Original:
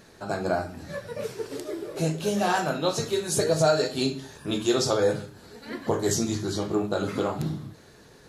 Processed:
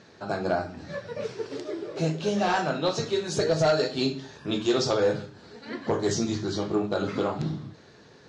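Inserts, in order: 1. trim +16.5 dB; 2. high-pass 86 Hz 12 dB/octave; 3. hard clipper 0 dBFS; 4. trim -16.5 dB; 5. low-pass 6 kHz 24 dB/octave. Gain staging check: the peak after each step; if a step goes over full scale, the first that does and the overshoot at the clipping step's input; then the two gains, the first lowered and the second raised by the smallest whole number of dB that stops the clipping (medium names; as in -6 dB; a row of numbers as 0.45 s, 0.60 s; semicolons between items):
+6.5 dBFS, +6.0 dBFS, 0.0 dBFS, -16.5 dBFS, -15.5 dBFS; step 1, 6.0 dB; step 1 +10.5 dB, step 4 -10.5 dB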